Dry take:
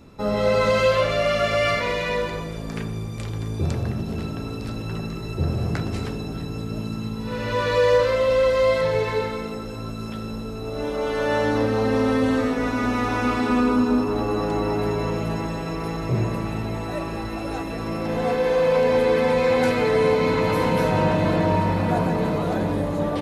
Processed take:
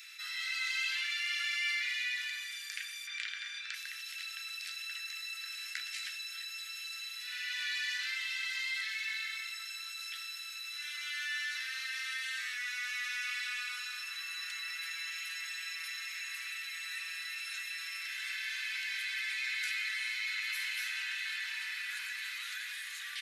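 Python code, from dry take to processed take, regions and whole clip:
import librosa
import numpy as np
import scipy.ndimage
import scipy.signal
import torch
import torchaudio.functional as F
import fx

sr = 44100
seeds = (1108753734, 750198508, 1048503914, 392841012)

y = fx.chain(x, sr, fx.lowpass(hz=3700.0, slope=12),
    fx.peak_eq(hz=1500.0, db=6.5, octaves=0.37),
    fx.env_flatten(amount_pct=70), at=(3.07, 3.74))
y = scipy.signal.sosfilt(scipy.signal.butter(8, 1700.0, 'highpass', fs=sr, output='sos'), y)
y = fx.env_flatten(y, sr, amount_pct=50)
y = y * 10.0 ** (-7.5 / 20.0)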